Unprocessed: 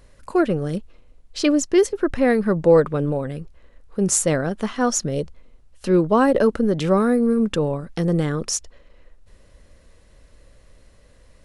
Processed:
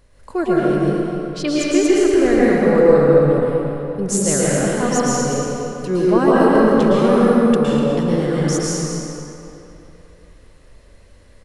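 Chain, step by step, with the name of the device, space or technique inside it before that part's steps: cave (echo 0.246 s -11 dB; reverb RT60 3.1 s, pre-delay 0.106 s, DRR -7 dB); gain -3.5 dB

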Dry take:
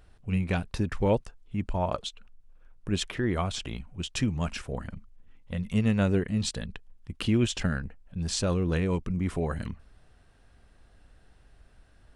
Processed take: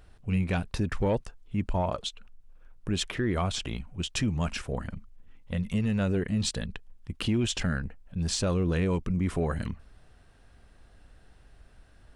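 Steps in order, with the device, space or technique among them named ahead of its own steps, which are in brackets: soft clipper into limiter (soft clip -14.5 dBFS, distortion -23 dB; limiter -21 dBFS, peak gain reduction 5 dB); gain +2 dB

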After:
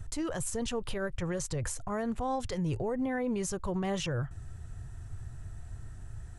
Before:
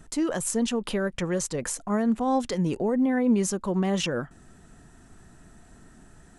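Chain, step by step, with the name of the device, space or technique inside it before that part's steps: car stereo with a boomy subwoofer (resonant low shelf 150 Hz +12.5 dB, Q 3; limiter -22.5 dBFS, peak gain reduction 9 dB); gain -3 dB

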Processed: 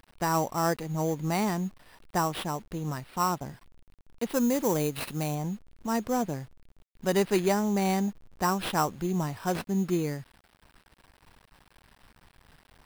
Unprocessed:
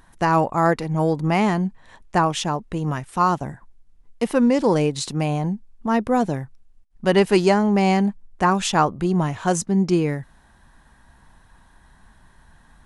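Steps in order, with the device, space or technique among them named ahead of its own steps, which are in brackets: early 8-bit sampler (sample-rate reducer 6700 Hz, jitter 0%; bit-crush 8-bit); 4.29–5.35 high shelf 7300 Hz +8.5 dB; gain -8.5 dB

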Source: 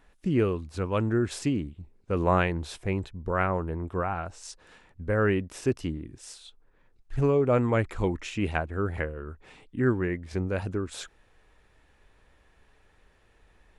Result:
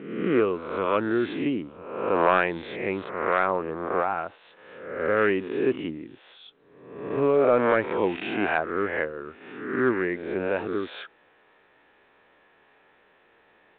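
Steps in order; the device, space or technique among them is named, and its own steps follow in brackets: spectral swells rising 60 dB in 0.91 s; telephone (BPF 290–3100 Hz; soft clip -10.5 dBFS, distortion -22 dB; gain +3.5 dB; A-law 64 kbps 8000 Hz)

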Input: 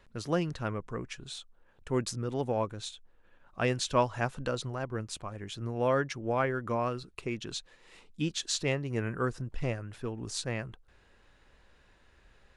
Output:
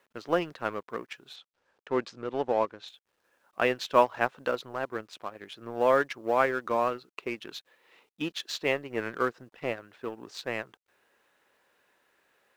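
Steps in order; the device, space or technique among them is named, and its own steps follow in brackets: phone line with mismatched companding (BPF 360–3300 Hz; G.711 law mismatch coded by A); 1.36–2.88 LPF 5700 Hz 12 dB/oct; gain +6.5 dB

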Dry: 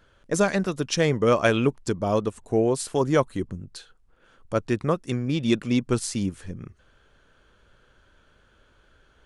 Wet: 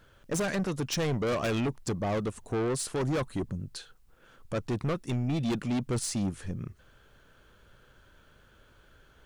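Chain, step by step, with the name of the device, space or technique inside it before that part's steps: open-reel tape (soft clip -26.5 dBFS, distortion -6 dB; bell 130 Hz +3.5 dB 0.89 oct; white noise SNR 46 dB)

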